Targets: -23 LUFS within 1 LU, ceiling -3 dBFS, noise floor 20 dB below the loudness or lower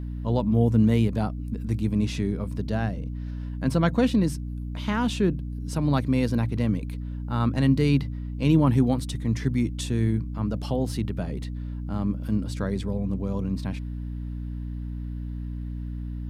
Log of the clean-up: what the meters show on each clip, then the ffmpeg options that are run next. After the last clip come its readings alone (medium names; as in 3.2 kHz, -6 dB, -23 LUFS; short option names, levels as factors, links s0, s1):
hum 60 Hz; highest harmonic 300 Hz; hum level -30 dBFS; loudness -26.5 LUFS; peak level -8.5 dBFS; loudness target -23.0 LUFS
-> -af "bandreject=f=60:t=h:w=4,bandreject=f=120:t=h:w=4,bandreject=f=180:t=h:w=4,bandreject=f=240:t=h:w=4,bandreject=f=300:t=h:w=4"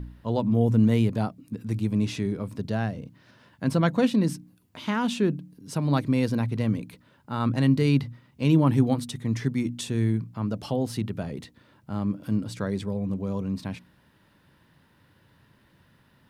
hum not found; loudness -26.0 LUFS; peak level -9.5 dBFS; loudness target -23.0 LUFS
-> -af "volume=1.41"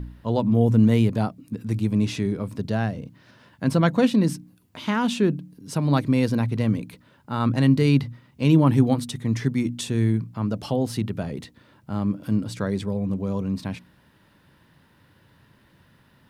loudness -23.5 LUFS; peak level -6.5 dBFS; noise floor -59 dBFS